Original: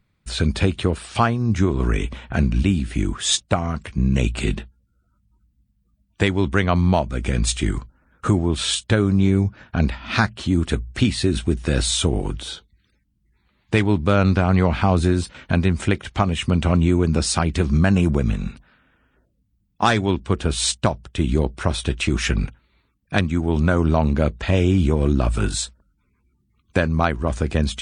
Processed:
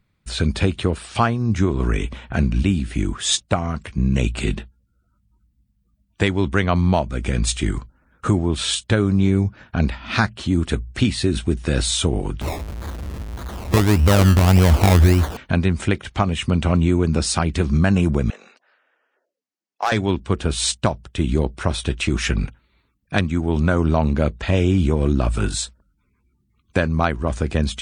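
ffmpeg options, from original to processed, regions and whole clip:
ffmpeg -i in.wav -filter_complex "[0:a]asettb=1/sr,asplit=3[link_01][link_02][link_03];[link_01]atrim=end=12.414[link_04];[link_02]atrim=start=12.41:end=15.37,asetpts=PTS-STARTPTS,afade=type=in:duration=0.004:curve=qsin,afade=type=out:start_time=2.956:duration=0.004:curve=qsin,aeval=exprs='val(0)+0.5*0.0422*sgn(val(0))':channel_layout=same,acrusher=samples=23:mix=1:aa=0.000001:lfo=1:lforange=13.8:lforate=1.7,equalizer=frequency=74:width_type=o:width=0.5:gain=12.5[link_05];[link_03]atrim=start=15.366[link_06];[link_04][link_05]acrossfade=duration=0.004:curve1=hsin:curve2=qsin[link_07];[link_07][link_06]acrossfade=duration=0.004:curve1=qsin:curve2=hsin,asettb=1/sr,asplit=3[link_08][link_09][link_10];[link_08]atrim=end=18.304[link_11];[link_09]atrim=start=18.3:end=19.92,asetpts=PTS-STARTPTS,afade=type=in:duration=0.004:curve=qsin,afade=type=out:start_time=1.616:duration=0.004:curve=qsin,highpass=frequency=470:width=0.5412,highpass=frequency=470:width=1.3066,equalizer=frequency=1000:width_type=q:width=4:gain=-4,equalizer=frequency=1400:width_type=q:width=4:gain=-4,equalizer=frequency=2400:width_type=q:width=4:gain=-4,equalizer=frequency=3500:width_type=q:width=4:gain=-9,lowpass=frequency=6600:width=0.5412,lowpass=frequency=6600:width=1.3066,volume=12dB,asoftclip=hard,volume=-12dB[link_12];[link_10]atrim=start=19.916[link_13];[link_11][link_12]acrossfade=duration=0.004:curve1=hsin:curve2=qsin[link_14];[link_14][link_13]acrossfade=duration=0.004:curve1=qsin:curve2=hsin" out.wav

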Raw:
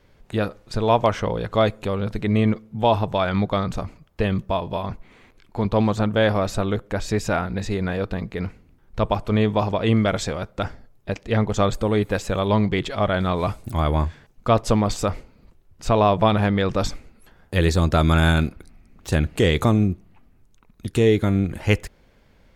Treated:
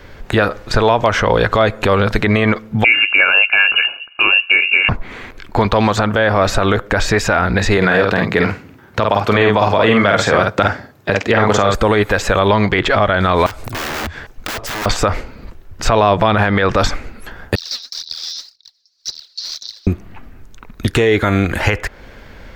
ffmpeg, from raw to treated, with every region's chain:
ffmpeg -i in.wav -filter_complex "[0:a]asettb=1/sr,asplit=3[link_01][link_02][link_03];[link_01]atrim=end=2.844[link_04];[link_02]atrim=start=2.84:end=4.89,asetpts=PTS-STARTPTS,afade=type=in:duration=0.004:curve=qsin,afade=type=out:start_time=2.046:duration=0.004:curve=qsin,equalizer=frequency=910:width_type=o:width=0.35:gain=-9,lowpass=frequency=2500:width_type=q:width=0.5098,lowpass=frequency=2500:width_type=q:width=0.6013,lowpass=frequency=2500:width_type=q:width=0.9,lowpass=frequency=2500:width_type=q:width=2.563,afreqshift=-2900,asuperstop=centerf=1900:order=20:qfactor=6.8[link_05];[link_03]atrim=start=4.886[link_06];[link_04][link_05]acrossfade=duration=0.004:curve1=hsin:curve2=qsin[link_07];[link_07][link_06]acrossfade=duration=0.004:curve1=qsin:curve2=hsin,asettb=1/sr,asplit=3[link_08][link_09][link_10];[link_08]atrim=end=7.774[link_11];[link_09]atrim=start=7.77:end=11.75,asetpts=PTS-STARTPTS,afade=type=in:duration=0.004:curve=qsin,afade=type=out:start_time=3.976:duration=0.004:curve=qsin,highpass=frequency=100:width=0.5412,highpass=frequency=100:width=1.3066,asplit=2[link_12][link_13];[link_13]adelay=49,volume=-5dB[link_14];[link_12][link_14]amix=inputs=2:normalize=0,atrim=end_sample=175518[link_15];[link_10]atrim=start=11.746[link_16];[link_11][link_15]acrossfade=duration=0.004:curve1=hsin:curve2=qsin[link_17];[link_17][link_16]acrossfade=duration=0.004:curve1=qsin:curve2=hsin,asettb=1/sr,asplit=3[link_18][link_19][link_20];[link_18]atrim=end=13.464[link_21];[link_19]atrim=start=13.46:end=14.86,asetpts=PTS-STARTPTS,afade=type=in:duration=0.004:curve=qsin,afade=type=out:start_time=1.396:duration=0.004:curve=qsin,equalizer=frequency=180:width_type=o:width=1.1:gain=-5,aeval=exprs='(mod(12.6*val(0)+1,2)-1)/12.6':channel_layout=same,acompressor=threshold=-41dB:ratio=6:attack=3.2:release=140:knee=1:detection=peak[link_22];[link_20]atrim=start=14.856[link_23];[link_21][link_22]acrossfade=duration=0.004:curve1=hsin:curve2=qsin[link_24];[link_24][link_23]acrossfade=duration=0.004:curve1=qsin:curve2=hsin,asettb=1/sr,asplit=3[link_25][link_26][link_27];[link_25]atrim=end=17.554[link_28];[link_26]atrim=start=17.55:end=19.87,asetpts=PTS-STARTPTS,afade=type=in:duration=0.004:curve=qsin,afade=type=out:start_time=2.316:duration=0.004:curve=qsin,asoftclip=type=hard:threshold=-23.5dB,asuperpass=centerf=4800:order=8:qfactor=2.6,aphaser=in_gain=1:out_gain=1:delay=4.5:decay=0.72:speed=1.9:type=sinusoidal[link_29];[link_27]atrim=start=19.866[link_30];[link_28][link_29]acrossfade=duration=0.004:curve1=hsin:curve2=qsin[link_31];[link_31][link_30]acrossfade=duration=0.004:curve1=qsin:curve2=hsin,equalizer=frequency=160:width_type=o:width=0.67:gain=-5,equalizer=frequency=1600:width_type=o:width=0.67:gain=5,equalizer=frequency=10000:width_type=o:width=0.67:gain=-7,acrossover=split=560|2500[link_32][link_33][link_34];[link_32]acompressor=threshold=-32dB:ratio=4[link_35];[link_33]acompressor=threshold=-26dB:ratio=4[link_36];[link_34]acompressor=threshold=-42dB:ratio=4[link_37];[link_35][link_36][link_37]amix=inputs=3:normalize=0,alimiter=level_in=19.5dB:limit=-1dB:release=50:level=0:latency=1,volume=-1dB" out.wav

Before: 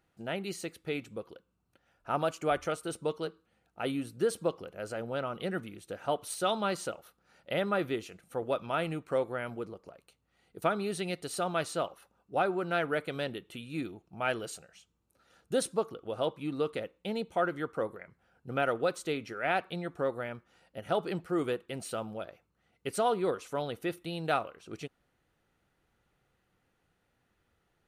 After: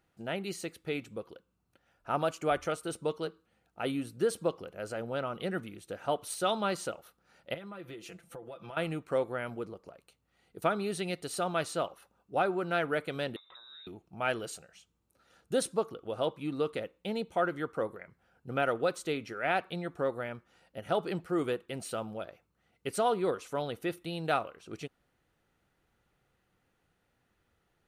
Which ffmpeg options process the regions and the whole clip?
ffmpeg -i in.wav -filter_complex "[0:a]asettb=1/sr,asplit=3[link_01][link_02][link_03];[link_01]atrim=end=7.544[link_04];[link_02]atrim=start=7.54:end=8.77,asetpts=PTS-STARTPTS,afade=type=in:duration=0.004:curve=qsin,afade=type=out:start_time=1.226:duration=0.004:curve=qsin,aecho=1:1:5.9:0.67,atrim=end_sample=54243,acompressor=threshold=-41dB:ratio=10:attack=3.2:release=140:knee=1:detection=peak[link_05];[link_03]atrim=start=8.766[link_06];[link_04][link_05]acrossfade=duration=0.004:curve1=hsin:curve2=qsin[link_07];[link_07][link_06]acrossfade=duration=0.004:curve1=qsin:curve2=hsin,asettb=1/sr,asplit=3[link_08][link_09][link_10];[link_08]atrim=end=13.364[link_11];[link_09]atrim=start=13.36:end=13.87,asetpts=PTS-STARTPTS,afade=type=in:duration=0.004:curve=qsin,afade=type=out:start_time=0.506:duration=0.004:curve=qsin,acompressor=threshold=-48dB:ratio=10:attack=3.2:release=140:knee=1:detection=peak,aeval=exprs='val(0)+0.000891*sin(2*PI*420*n/s)':channel_layout=same,lowpass=frequency=3400:width_type=q:width=0.5098,lowpass=frequency=3400:width_type=q:width=0.6013,lowpass=frequency=3400:width_type=q:width=0.9,lowpass=frequency=3400:width_type=q:width=2.563,afreqshift=-4000[link_12];[link_10]atrim=start=13.866[link_13];[link_11][link_12]acrossfade=duration=0.004:curve1=hsin:curve2=qsin[link_14];[link_14][link_13]acrossfade=duration=0.004:curve1=qsin:curve2=hsin" out.wav

